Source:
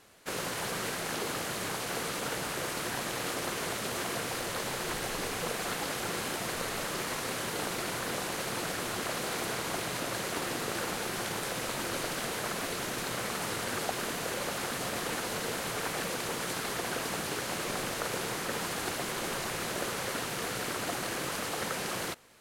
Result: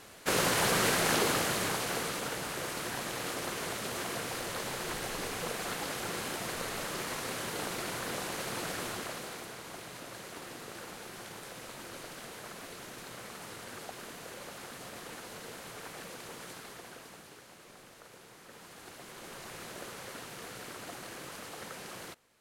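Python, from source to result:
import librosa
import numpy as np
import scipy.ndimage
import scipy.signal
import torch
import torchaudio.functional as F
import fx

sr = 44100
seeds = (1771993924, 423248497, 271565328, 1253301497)

y = fx.gain(x, sr, db=fx.line((1.12, 7.0), (2.34, -2.5), (8.85, -2.5), (9.51, -11.0), (16.46, -11.0), (17.54, -20.0), (18.3, -20.0), (19.56, -10.0)))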